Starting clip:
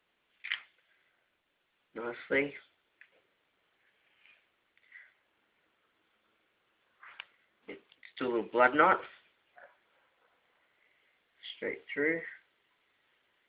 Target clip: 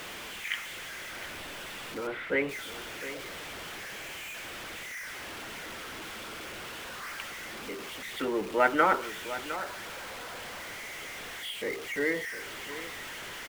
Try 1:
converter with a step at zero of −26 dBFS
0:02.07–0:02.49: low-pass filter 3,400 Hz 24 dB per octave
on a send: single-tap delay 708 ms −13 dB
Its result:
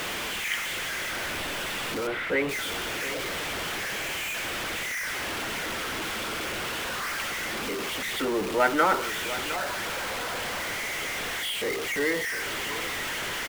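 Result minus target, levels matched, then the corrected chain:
converter with a step at zero: distortion +7 dB
converter with a step at zero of −35.5 dBFS
0:02.07–0:02.49: low-pass filter 3,400 Hz 24 dB per octave
on a send: single-tap delay 708 ms −13 dB

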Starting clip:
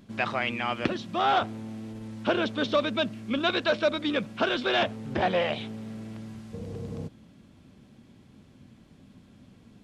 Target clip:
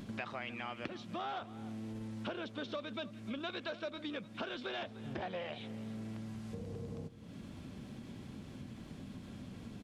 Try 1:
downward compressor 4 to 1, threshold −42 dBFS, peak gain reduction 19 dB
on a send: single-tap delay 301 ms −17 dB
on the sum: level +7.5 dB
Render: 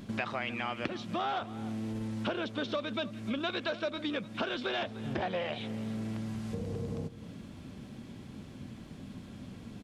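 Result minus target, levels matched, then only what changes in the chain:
downward compressor: peak gain reduction −7 dB
change: downward compressor 4 to 1, threshold −51.5 dBFS, peak gain reduction 26 dB

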